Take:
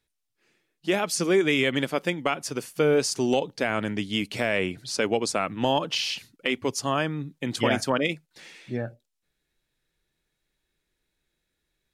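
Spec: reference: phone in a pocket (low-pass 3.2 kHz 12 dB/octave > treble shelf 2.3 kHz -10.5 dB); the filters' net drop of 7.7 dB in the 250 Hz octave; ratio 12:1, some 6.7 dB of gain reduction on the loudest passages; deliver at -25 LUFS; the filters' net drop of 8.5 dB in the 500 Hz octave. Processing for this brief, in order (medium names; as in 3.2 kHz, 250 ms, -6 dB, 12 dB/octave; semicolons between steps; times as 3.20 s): peaking EQ 250 Hz -7 dB; peaking EQ 500 Hz -8 dB; compression 12:1, threshold -29 dBFS; low-pass 3.2 kHz 12 dB/octave; treble shelf 2.3 kHz -10.5 dB; trim +13.5 dB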